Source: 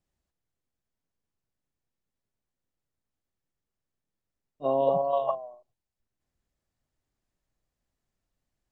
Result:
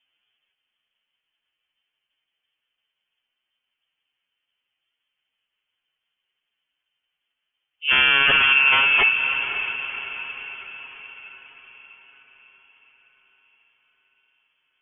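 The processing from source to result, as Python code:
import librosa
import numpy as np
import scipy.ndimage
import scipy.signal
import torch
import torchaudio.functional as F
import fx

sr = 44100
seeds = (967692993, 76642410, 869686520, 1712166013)

p1 = fx.env_lowpass(x, sr, base_hz=1900.0, full_db=-23.0)
p2 = scipy.signal.sosfilt(scipy.signal.butter(2, 160.0, 'highpass', fs=sr, output='sos'), p1)
p3 = fx.fold_sine(p2, sr, drive_db=13, ceiling_db=-11.5)
p4 = fx.stretch_vocoder(p3, sr, factor=1.7)
p5 = p4 + fx.echo_diffused(p4, sr, ms=555, feedback_pct=52, wet_db=-9.5, dry=0)
p6 = fx.freq_invert(p5, sr, carrier_hz=3300)
y = p6 * librosa.db_to_amplitude(-1.5)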